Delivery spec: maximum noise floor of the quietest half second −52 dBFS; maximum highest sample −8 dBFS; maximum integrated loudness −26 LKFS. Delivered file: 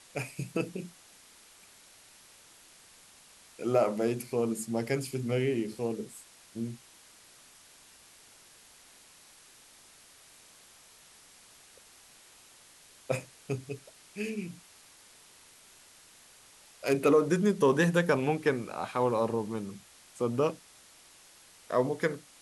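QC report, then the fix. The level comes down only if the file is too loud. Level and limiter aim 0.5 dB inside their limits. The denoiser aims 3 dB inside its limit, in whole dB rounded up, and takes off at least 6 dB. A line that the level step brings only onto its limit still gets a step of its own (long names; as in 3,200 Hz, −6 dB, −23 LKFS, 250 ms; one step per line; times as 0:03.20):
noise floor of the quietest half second −57 dBFS: in spec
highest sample −12.5 dBFS: in spec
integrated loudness −30.5 LKFS: in spec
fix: no processing needed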